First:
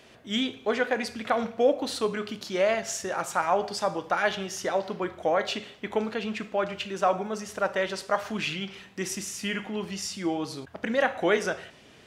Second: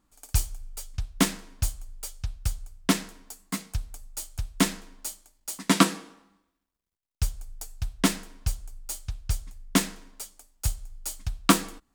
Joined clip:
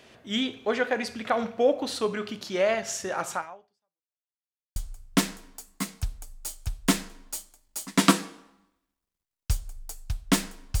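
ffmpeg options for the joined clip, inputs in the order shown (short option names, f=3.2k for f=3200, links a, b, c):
-filter_complex "[0:a]apad=whole_dur=10.8,atrim=end=10.8,asplit=2[a][b];[a]atrim=end=4.25,asetpts=PTS-STARTPTS,afade=t=out:st=3.34:d=0.91:c=exp[c];[b]atrim=start=4.25:end=4.76,asetpts=PTS-STARTPTS,volume=0[d];[1:a]atrim=start=2.48:end=8.52,asetpts=PTS-STARTPTS,afade=t=in:d=0.004:c=hsin[e];[c][d][e]concat=n=3:v=0:a=1"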